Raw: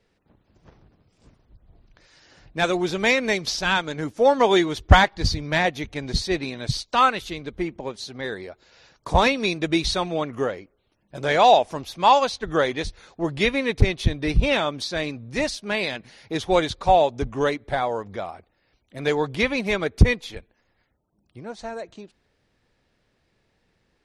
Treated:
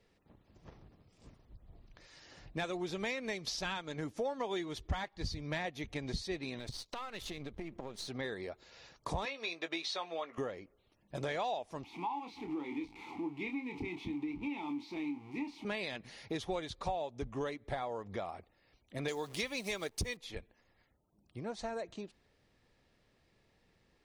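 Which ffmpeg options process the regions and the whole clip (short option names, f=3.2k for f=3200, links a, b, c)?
-filter_complex "[0:a]asettb=1/sr,asplit=3[a][b][c];[a]atrim=end=6.594[d];[b]atrim=start=6.59:end=8.08,asetpts=PTS-STARTPTS,afade=t=in:d=0.004:c=qsin,afade=t=out:st=1.486:d=0.004:c=qsin,aeval=exprs='if(lt(val(0),0),0.447*val(0),val(0))':c=same,acompressor=threshold=-34dB:ratio=12:attack=3.2:release=140:knee=1:detection=peak[e];[c]atrim=start=8.076[f];[d][e]acrossfade=d=0.004:c1=hsin:c2=qsin[g];[g][f]acrossfade=d=0.004:c1=qsin:c2=hsin,asettb=1/sr,asplit=3[h][i][j];[h]atrim=end=9.254[k];[i]atrim=start=9.25:end=10.38,asetpts=PTS-STARTPTS,afade=t=in:d=0.004:c=qsin,afade=t=out:st=1.126:d=0.004:c=qsin,highpass=570,lowpass=5.3k,asplit=2[l][m];[m]adelay=18,volume=-10dB[n];[l][n]amix=inputs=2:normalize=0,atrim=end_sample=49833[o];[j]atrim=start=10.376[p];[k][o]acrossfade=d=0.004:c1=hsin:c2=qsin[q];[q][p]acrossfade=d=0.004:c1=qsin:c2=hsin,asettb=1/sr,asplit=3[r][s][t];[r]atrim=end=11.844[u];[s]atrim=start=11.84:end=15.65,asetpts=PTS-STARTPTS,afade=t=in:d=0.004:c=qsin,afade=t=out:st=3.806:d=0.004:c=qsin,aeval=exprs='val(0)+0.5*0.0596*sgn(val(0))':c=same,asplit=3[v][w][x];[v]bandpass=f=300:t=q:w=8,volume=0dB[y];[w]bandpass=f=870:t=q:w=8,volume=-6dB[z];[x]bandpass=f=2.24k:t=q:w=8,volume=-9dB[aa];[y][z][aa]amix=inputs=3:normalize=0,asplit=2[ab][ac];[ac]adelay=28,volume=-7dB[ad];[ab][ad]amix=inputs=2:normalize=0,atrim=end_sample=168021[ae];[t]atrim=start=15.646[af];[u][ae]acrossfade=d=0.004:c1=hsin:c2=qsin[ag];[ag][af]acrossfade=d=0.004:c1=qsin:c2=hsin,asettb=1/sr,asplit=3[ah][ai][aj];[ah]atrim=end=19.084[ak];[ai]atrim=start=19.08:end=20.17,asetpts=PTS-STARTPTS,afade=t=in:d=0.004:c=qsin,afade=t=out:st=1.086:d=0.004:c=qsin,bass=f=250:g=-5,treble=f=4k:g=14,acrusher=bits=8:dc=4:mix=0:aa=0.000001[al];[aj]atrim=start=20.166[am];[ak][al]acrossfade=d=0.004:c1=hsin:c2=qsin[an];[an][am]acrossfade=d=0.004:c1=qsin:c2=hsin,acompressor=threshold=-33dB:ratio=5,bandreject=f=1.5k:w=13,volume=-3dB"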